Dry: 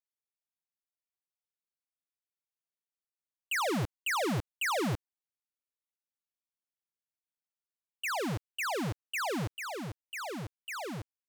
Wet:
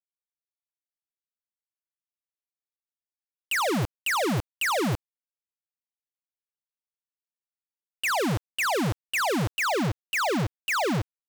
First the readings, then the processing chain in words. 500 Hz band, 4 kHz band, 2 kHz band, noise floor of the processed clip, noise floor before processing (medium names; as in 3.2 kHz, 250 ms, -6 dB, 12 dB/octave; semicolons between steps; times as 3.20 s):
+8.0 dB, +7.5 dB, +7.5 dB, under -85 dBFS, under -85 dBFS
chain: compression 6:1, threshold -35 dBFS, peak gain reduction 4 dB; companded quantiser 2-bit